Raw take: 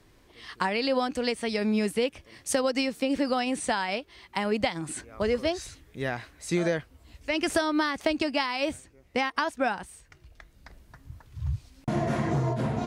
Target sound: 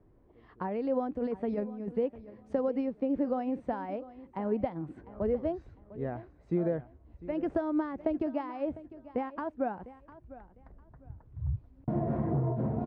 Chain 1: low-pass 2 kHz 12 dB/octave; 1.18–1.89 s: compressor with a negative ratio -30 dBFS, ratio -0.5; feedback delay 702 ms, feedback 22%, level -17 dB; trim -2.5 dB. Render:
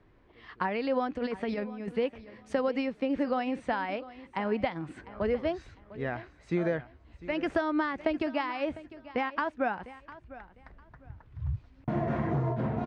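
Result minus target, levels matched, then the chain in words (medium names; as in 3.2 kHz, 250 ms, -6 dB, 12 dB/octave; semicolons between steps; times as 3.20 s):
2 kHz band +12.5 dB
low-pass 700 Hz 12 dB/octave; 1.18–1.89 s: compressor with a negative ratio -30 dBFS, ratio -0.5; feedback delay 702 ms, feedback 22%, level -17 dB; trim -2.5 dB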